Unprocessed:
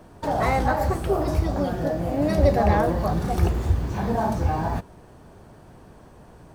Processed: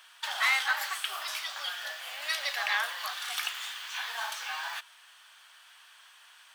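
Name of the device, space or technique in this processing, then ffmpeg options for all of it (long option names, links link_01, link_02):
headphones lying on a table: -af "highpass=frequency=1400:width=0.5412,highpass=frequency=1400:width=1.3066,equalizer=frequency=3200:width_type=o:width=0.59:gain=11,volume=4dB"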